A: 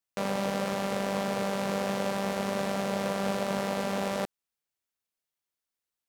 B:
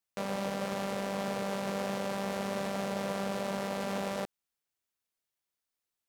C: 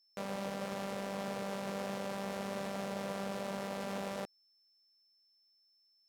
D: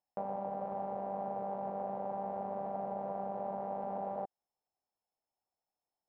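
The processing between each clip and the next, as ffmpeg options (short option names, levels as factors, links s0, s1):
-af "alimiter=limit=0.0708:level=0:latency=1"
-af "aeval=exprs='val(0)+0.000631*sin(2*PI*5300*n/s)':c=same,volume=0.562"
-af "acompressor=threshold=0.00891:ratio=6,lowpass=f=790:t=q:w=4.6,volume=1.12"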